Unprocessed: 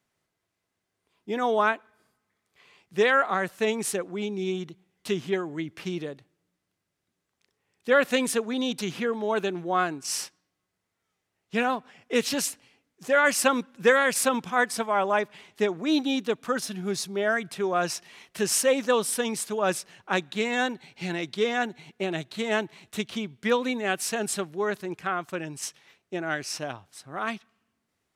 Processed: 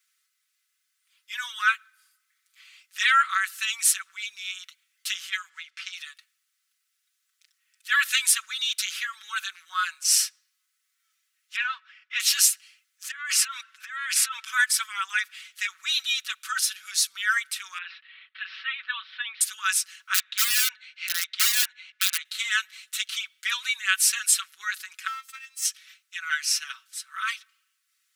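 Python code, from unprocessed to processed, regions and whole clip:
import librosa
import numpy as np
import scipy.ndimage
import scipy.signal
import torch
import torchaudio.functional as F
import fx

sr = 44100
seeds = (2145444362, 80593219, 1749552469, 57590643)

y = fx.chain(x, sr, fx.block_float(bits=7),
    fx.air_absorb(metres=92.0), at=(5.49, 5.93))
y = fx.chain(y, sr, fx.median_filter(points=5),
    fx.gate_hold(open_db=-45.0, close_db=-51.0, hold_ms=71.0, range_db=-21, attack_ms=1.4, release_ms=100.0),
    fx.air_absorb(metres=220.0), at=(11.56, 12.2))
y = fx.chain(y, sr, fx.lowpass(hz=1900.0, slope=6),
    fx.low_shelf(hz=320.0, db=-8.0),
    fx.over_compress(threshold_db=-32.0, ratio=-1.0), at=(13.11, 14.45))
y = fx.chain(y, sr, fx.ellip_bandpass(low_hz=850.0, high_hz=3800.0, order=3, stop_db=40),
    fx.air_absorb(metres=330.0), at=(17.78, 19.41))
y = fx.chain(y, sr, fx.bandpass_edges(low_hz=270.0, high_hz=3300.0),
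    fx.overflow_wrap(gain_db=23.0), at=(20.14, 22.25))
y = fx.chain(y, sr, fx.halfwave_gain(db=-7.0),
    fx.peak_eq(hz=1400.0, db=-5.0, octaves=0.27),
    fx.robotise(hz=265.0), at=(25.07, 25.65))
y = scipy.signal.sosfilt(scipy.signal.ellip(4, 1.0, 50, 1300.0, 'highpass', fs=sr, output='sos'), y)
y = fx.tilt_eq(y, sr, slope=3.0)
y = y + 0.9 * np.pad(y, (int(5.3 * sr / 1000.0), 0))[:len(y)]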